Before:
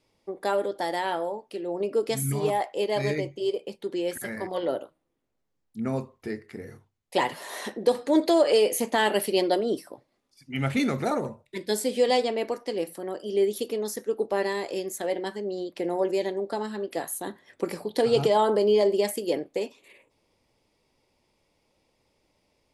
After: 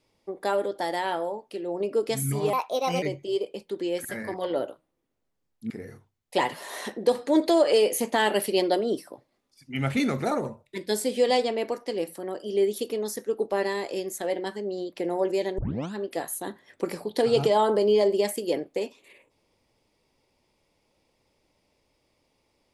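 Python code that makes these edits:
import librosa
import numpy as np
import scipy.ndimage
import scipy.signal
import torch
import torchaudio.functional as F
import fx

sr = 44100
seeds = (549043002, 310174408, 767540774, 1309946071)

y = fx.edit(x, sr, fx.speed_span(start_s=2.53, length_s=0.62, speed=1.26),
    fx.cut(start_s=5.83, length_s=0.67),
    fx.tape_start(start_s=16.38, length_s=0.35), tone=tone)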